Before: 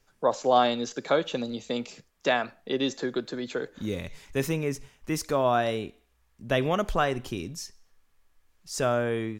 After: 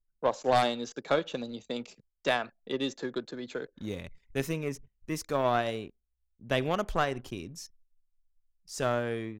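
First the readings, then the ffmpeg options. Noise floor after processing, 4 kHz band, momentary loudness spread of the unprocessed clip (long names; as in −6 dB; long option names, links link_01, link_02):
−79 dBFS, −3.5 dB, 12 LU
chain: -af "aeval=exprs='0.398*(cos(1*acos(clip(val(0)/0.398,-1,1)))-cos(1*PI/2))+0.158*(cos(2*acos(clip(val(0)/0.398,-1,1)))-cos(2*PI/2))+0.0398*(cos(4*acos(clip(val(0)/0.398,-1,1)))-cos(4*PI/2))+0.0447*(cos(5*acos(clip(val(0)/0.398,-1,1)))-cos(5*PI/2))+0.0447*(cos(7*acos(clip(val(0)/0.398,-1,1)))-cos(7*PI/2))':channel_layout=same,anlmdn=0.01,volume=-4dB"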